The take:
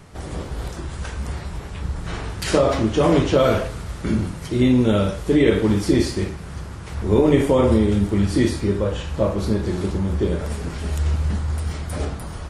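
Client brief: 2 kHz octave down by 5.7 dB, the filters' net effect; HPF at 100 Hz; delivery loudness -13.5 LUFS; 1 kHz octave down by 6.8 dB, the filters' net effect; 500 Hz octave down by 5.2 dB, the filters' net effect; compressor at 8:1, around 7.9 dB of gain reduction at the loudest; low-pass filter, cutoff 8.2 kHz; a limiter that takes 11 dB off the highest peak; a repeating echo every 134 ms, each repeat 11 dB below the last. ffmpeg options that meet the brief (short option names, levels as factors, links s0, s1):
-af "highpass=100,lowpass=8200,equalizer=f=500:t=o:g=-5,equalizer=f=1000:t=o:g=-6,equalizer=f=2000:t=o:g=-5,acompressor=threshold=0.0794:ratio=8,alimiter=limit=0.0668:level=0:latency=1,aecho=1:1:134|268|402:0.282|0.0789|0.0221,volume=8.91"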